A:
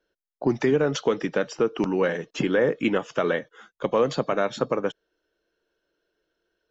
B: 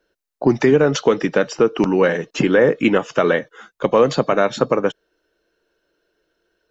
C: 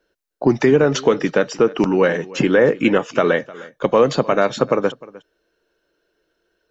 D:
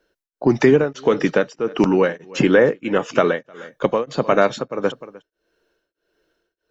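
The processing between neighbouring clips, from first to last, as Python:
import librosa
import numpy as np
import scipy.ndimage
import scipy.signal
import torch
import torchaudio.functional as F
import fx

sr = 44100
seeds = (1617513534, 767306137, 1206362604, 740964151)

y1 = fx.notch(x, sr, hz=3300.0, q=18.0)
y1 = y1 * 10.0 ** (7.5 / 20.0)
y2 = y1 + 10.0 ** (-20.5 / 20.0) * np.pad(y1, (int(305 * sr / 1000.0), 0))[:len(y1)]
y3 = y2 * np.abs(np.cos(np.pi * 1.6 * np.arange(len(y2)) / sr))
y3 = y3 * 10.0 ** (1.5 / 20.0)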